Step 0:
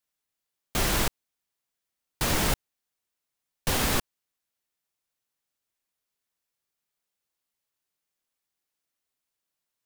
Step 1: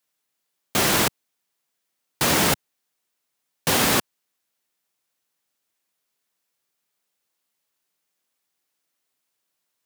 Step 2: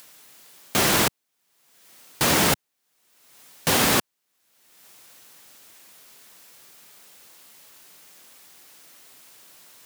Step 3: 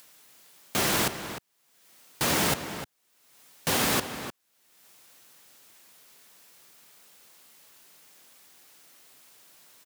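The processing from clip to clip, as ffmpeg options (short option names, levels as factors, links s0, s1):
-af "highpass=140,volume=2.24"
-af "acompressor=mode=upward:threshold=0.0398:ratio=2.5"
-filter_complex "[0:a]asplit=2[s0][s1];[s1]adelay=303.2,volume=0.316,highshelf=f=4000:g=-6.82[s2];[s0][s2]amix=inputs=2:normalize=0,volume=0.531"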